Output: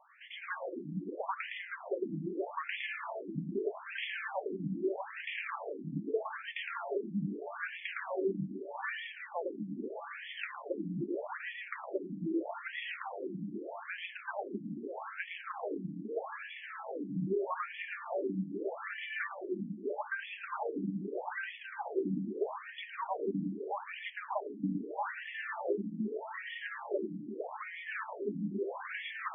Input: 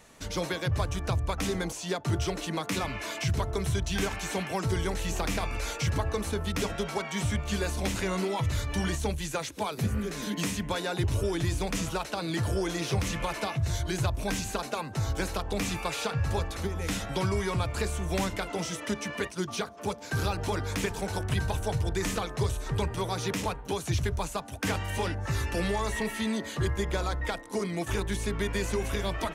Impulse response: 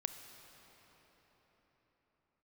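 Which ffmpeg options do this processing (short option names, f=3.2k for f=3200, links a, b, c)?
-filter_complex "[0:a]lowpass=3.3k,asplit=2[a][b];[1:a]atrim=start_sample=2205,asetrate=26460,aresample=44100,adelay=112[c];[b][c]afir=irnorm=-1:irlink=0,volume=-4dB[d];[a][d]amix=inputs=2:normalize=0,afftfilt=real='re*between(b*sr/1024,220*pow(2500/220,0.5+0.5*sin(2*PI*0.8*pts/sr))/1.41,220*pow(2500/220,0.5+0.5*sin(2*PI*0.8*pts/sr))*1.41)':imag='im*between(b*sr/1024,220*pow(2500/220,0.5+0.5*sin(2*PI*0.8*pts/sr))/1.41,220*pow(2500/220,0.5+0.5*sin(2*PI*0.8*pts/sr))*1.41)':win_size=1024:overlap=0.75"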